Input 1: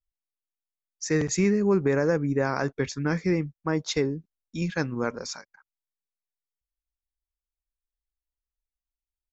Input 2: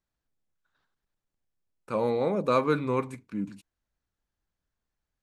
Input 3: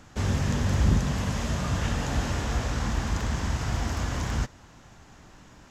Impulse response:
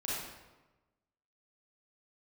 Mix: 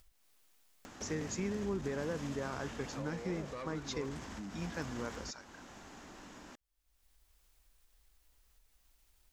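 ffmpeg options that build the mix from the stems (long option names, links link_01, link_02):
-filter_complex "[0:a]acompressor=threshold=-48dB:ratio=1.5,volume=-4.5dB,asplit=2[link_01][link_02];[1:a]adelay=1050,volume=-2.5dB[link_03];[2:a]lowshelf=frequency=180:width_type=q:width=1.5:gain=-8.5,alimiter=level_in=1.5dB:limit=-24dB:level=0:latency=1:release=49,volume=-1.5dB,acompressor=threshold=-35dB:ratio=6,adelay=850,volume=-4.5dB[link_04];[link_02]apad=whole_len=276902[link_05];[link_03][link_05]sidechaincompress=threshold=-47dB:ratio=3:attack=16:release=464[link_06];[link_06][link_04]amix=inputs=2:normalize=0,asoftclip=type=tanh:threshold=-30dB,acompressor=threshold=-42dB:ratio=6,volume=0dB[link_07];[link_01][link_07]amix=inputs=2:normalize=0,acompressor=mode=upward:threshold=-45dB:ratio=2.5"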